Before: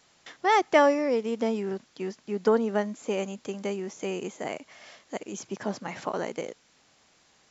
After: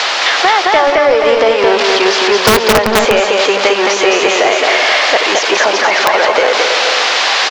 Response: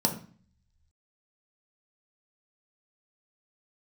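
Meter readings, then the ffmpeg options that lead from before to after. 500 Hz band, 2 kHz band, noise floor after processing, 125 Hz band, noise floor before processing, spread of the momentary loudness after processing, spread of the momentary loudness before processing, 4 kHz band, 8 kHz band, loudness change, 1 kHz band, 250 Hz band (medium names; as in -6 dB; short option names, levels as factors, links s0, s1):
+17.0 dB, +24.5 dB, -15 dBFS, +11.5 dB, -63 dBFS, 1 LU, 16 LU, +30.5 dB, no reading, +18.5 dB, +18.0 dB, +10.5 dB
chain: -filter_complex "[0:a]aeval=exprs='val(0)+0.5*0.02*sgn(val(0))':c=same,acrossover=split=490[s0][s1];[s0]acrusher=bits=2:mix=0:aa=0.5[s2];[s1]acompressor=threshold=0.0141:ratio=16[s3];[s2][s3]amix=inputs=2:normalize=0,lowpass=f=4800:w=0.5412,lowpass=f=4800:w=1.3066,lowshelf=f=270:g=4,asplit=2[s4][s5];[s5]aecho=0:1:217|385|480|633:0.708|0.282|0.335|0.178[s6];[s4][s6]amix=inputs=2:normalize=0,aeval=exprs='(mod(15.8*val(0)+1,2)-1)/15.8':c=same,apsyclip=37.6,equalizer=f=95:w=4.3:g=8,volume=0.75"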